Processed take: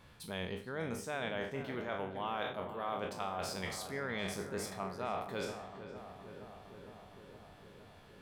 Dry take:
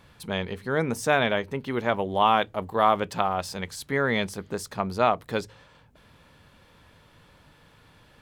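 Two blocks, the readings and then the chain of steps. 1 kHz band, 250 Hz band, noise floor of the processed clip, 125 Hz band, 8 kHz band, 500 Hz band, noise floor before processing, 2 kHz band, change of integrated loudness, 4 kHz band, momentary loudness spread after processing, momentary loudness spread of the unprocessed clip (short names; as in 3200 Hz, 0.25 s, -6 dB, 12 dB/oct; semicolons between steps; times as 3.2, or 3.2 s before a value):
-15.5 dB, -12.0 dB, -57 dBFS, -11.5 dB, -7.5 dB, -12.5 dB, -57 dBFS, -12.5 dB, -14.0 dB, -11.0 dB, 17 LU, 10 LU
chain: spectral trails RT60 0.49 s; reverse; compressor 5:1, threshold -30 dBFS, peak gain reduction 14.5 dB; reverse; darkening echo 0.463 s, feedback 77%, low-pass 1800 Hz, level -10 dB; gain -6 dB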